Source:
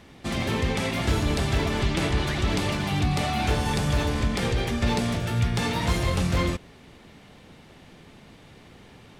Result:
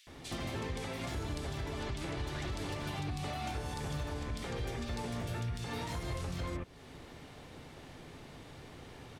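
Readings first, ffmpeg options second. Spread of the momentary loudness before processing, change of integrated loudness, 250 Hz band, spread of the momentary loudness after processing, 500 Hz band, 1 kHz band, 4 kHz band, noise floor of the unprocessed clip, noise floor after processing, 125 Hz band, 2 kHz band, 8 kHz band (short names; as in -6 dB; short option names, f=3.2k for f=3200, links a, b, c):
2 LU, -13.5 dB, -14.5 dB, 13 LU, -12.5 dB, -12.5 dB, -13.5 dB, -51 dBFS, -52 dBFS, -13.0 dB, -14.0 dB, -12.5 dB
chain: -filter_complex "[0:a]asplit=2[a][b];[b]acompressor=threshold=-38dB:ratio=6,volume=2.5dB[c];[a][c]amix=inputs=2:normalize=0,equalizer=f=200:t=o:w=0.22:g=-11.5,acrossover=split=2600[d][e];[d]adelay=70[f];[f][e]amix=inputs=2:normalize=0,alimiter=limit=-21.5dB:level=0:latency=1:release=315,volume=-7.5dB"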